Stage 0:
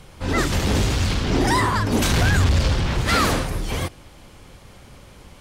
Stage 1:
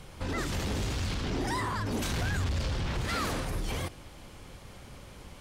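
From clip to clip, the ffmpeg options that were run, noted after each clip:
ffmpeg -i in.wav -af "alimiter=limit=-22dB:level=0:latency=1:release=40,volume=-3dB" out.wav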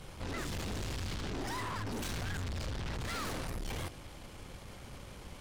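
ffmpeg -i in.wav -af "aeval=exprs='(tanh(70.8*val(0)+0.4)-tanh(0.4))/70.8':channel_layout=same,volume=1dB" out.wav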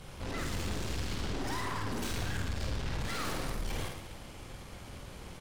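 ffmpeg -i in.wav -af "aecho=1:1:50|112.5|190.6|288.3|410.4:0.631|0.398|0.251|0.158|0.1" out.wav

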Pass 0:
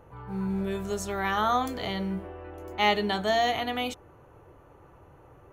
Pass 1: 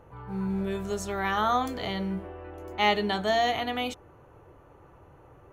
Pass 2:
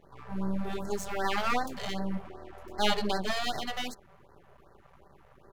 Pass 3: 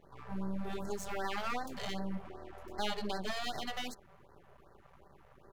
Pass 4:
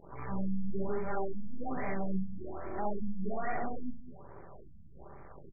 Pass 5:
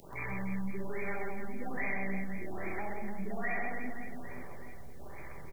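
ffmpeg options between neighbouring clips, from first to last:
ffmpeg -i in.wav -af "highshelf=frequency=9600:gain=-4.5" out.wav
ffmpeg -i in.wav -af "aecho=1:1:5.1:0.6,aeval=exprs='max(val(0),0)':channel_layout=same,afftfilt=real='re*(1-between(b*sr/1024,260*pow(2900/260,0.5+0.5*sin(2*PI*2.6*pts/sr))/1.41,260*pow(2900/260,0.5+0.5*sin(2*PI*2.6*pts/sr))*1.41))':imag='im*(1-between(b*sr/1024,260*pow(2900/260,0.5+0.5*sin(2*PI*2.6*pts/sr))/1.41,260*pow(2900/260,0.5+0.5*sin(2*PI*2.6*pts/sr))*1.41))':win_size=1024:overlap=0.75" out.wav
ffmpeg -i in.wav -af "acompressor=threshold=-31dB:ratio=2.5,volume=-2.5dB" out.wav
ffmpeg -i in.wav -filter_complex "[0:a]asoftclip=type=tanh:threshold=-34.5dB,asplit=2[link_01][link_02];[link_02]aecho=0:1:64.14|204.1:0.794|0.316[link_03];[link_01][link_03]amix=inputs=2:normalize=0,afftfilt=real='re*lt(b*sr/1024,240*pow(2500/240,0.5+0.5*sin(2*PI*1.2*pts/sr)))':imag='im*lt(b*sr/1024,240*pow(2500/240,0.5+0.5*sin(2*PI*1.2*pts/sr)))':win_size=1024:overlap=0.75,volume=7dB" out.wav
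ffmpeg -i in.wav -filter_complex "[0:a]aexciter=amount=10.4:drive=7.4:freq=2100,acrossover=split=110|1700[link_01][link_02][link_03];[link_01]acompressor=threshold=-44dB:ratio=4[link_04];[link_02]acompressor=threshold=-41dB:ratio=4[link_05];[link_03]acompressor=threshold=-41dB:ratio=4[link_06];[link_04][link_05][link_06]amix=inputs=3:normalize=0,aecho=1:1:130|299|518.7|804.3|1176:0.631|0.398|0.251|0.158|0.1,volume=1dB" out.wav

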